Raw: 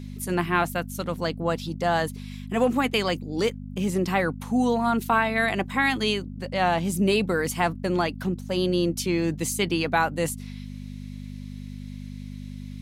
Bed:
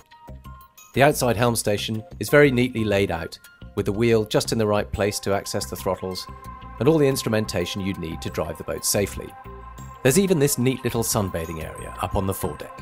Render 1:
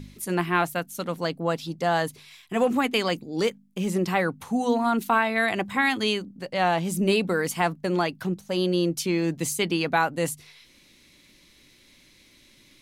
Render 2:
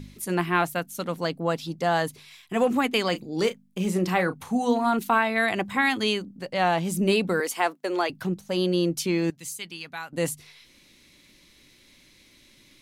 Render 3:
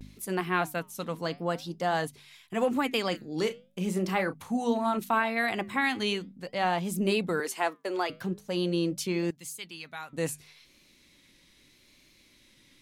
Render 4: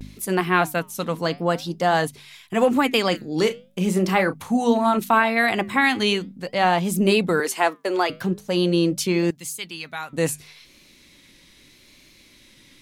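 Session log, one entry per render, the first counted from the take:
de-hum 50 Hz, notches 5
3.10–4.99 s: doubling 33 ms -11 dB; 7.40–8.10 s: high-pass 320 Hz 24 dB/octave; 9.30–10.13 s: amplifier tone stack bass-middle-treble 5-5-5
flange 0.43 Hz, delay 0.4 ms, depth 7.2 ms, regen -87%; vibrato 0.77 Hz 61 cents
trim +8.5 dB

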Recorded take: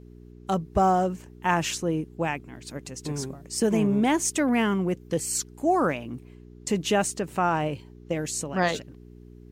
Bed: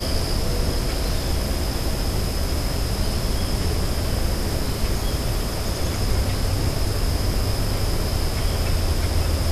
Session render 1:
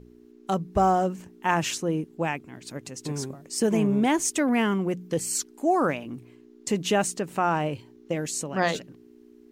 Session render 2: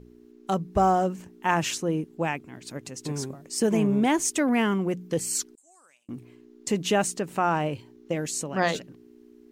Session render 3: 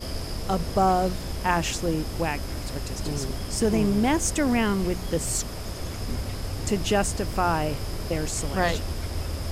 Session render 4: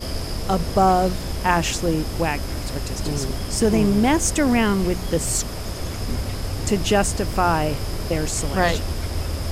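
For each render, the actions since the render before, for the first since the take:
de-hum 60 Hz, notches 3
5.55–6.09 s: band-pass filter 8 kHz, Q 6.1
add bed -9 dB
trim +4.5 dB

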